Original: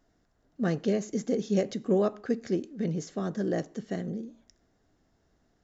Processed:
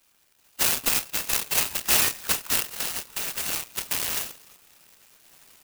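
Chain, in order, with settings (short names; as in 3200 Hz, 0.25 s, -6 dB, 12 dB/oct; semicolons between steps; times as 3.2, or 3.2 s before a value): bin magnitudes rounded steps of 30 dB; recorder AGC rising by 6.3 dB/s; 0.89–1.61 steep high-pass 320 Hz 36 dB/oct; 2.74–3.76 compressor 3:1, threshold -32 dBFS, peak gain reduction 5.5 dB; flange 0.37 Hz, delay 6.8 ms, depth 2.7 ms, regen +81%; doubler 28 ms -7.5 dB; thinning echo 0.297 s, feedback 84%, high-pass 480 Hz, level -21 dB; inverted band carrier 3100 Hz; clock jitter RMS 0.11 ms; gain +8.5 dB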